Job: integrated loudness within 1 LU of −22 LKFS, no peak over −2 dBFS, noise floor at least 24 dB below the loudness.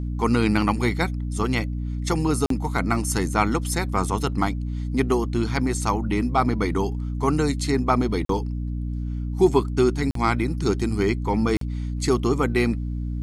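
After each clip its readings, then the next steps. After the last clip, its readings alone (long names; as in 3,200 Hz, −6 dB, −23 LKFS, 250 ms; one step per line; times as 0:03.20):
number of dropouts 4; longest dropout 43 ms; mains hum 60 Hz; hum harmonics up to 300 Hz; level of the hum −25 dBFS; integrated loudness −23.5 LKFS; sample peak −5.0 dBFS; target loudness −22.0 LKFS
→ repair the gap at 0:02.46/0:08.25/0:10.11/0:11.57, 43 ms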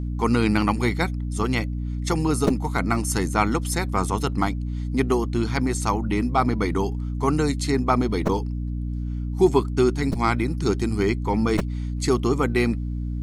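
number of dropouts 0; mains hum 60 Hz; hum harmonics up to 300 Hz; level of the hum −25 dBFS
→ hum removal 60 Hz, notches 5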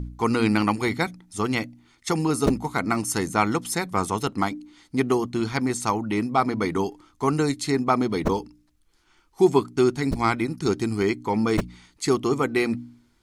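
mains hum none found; integrated loudness −24.5 LKFS; sample peak −5.5 dBFS; target loudness −22.0 LKFS
→ level +2.5 dB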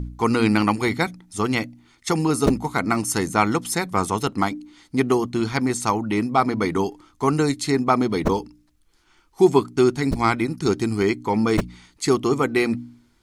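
integrated loudness −22.0 LKFS; sample peak −3.0 dBFS; background noise floor −60 dBFS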